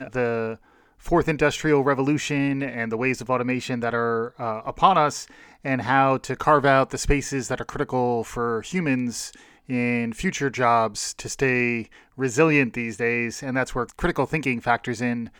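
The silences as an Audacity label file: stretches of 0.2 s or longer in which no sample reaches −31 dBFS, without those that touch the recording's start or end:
0.540000	1.060000	silence
5.230000	5.650000	silence
9.340000	9.700000	silence
11.830000	12.190000	silence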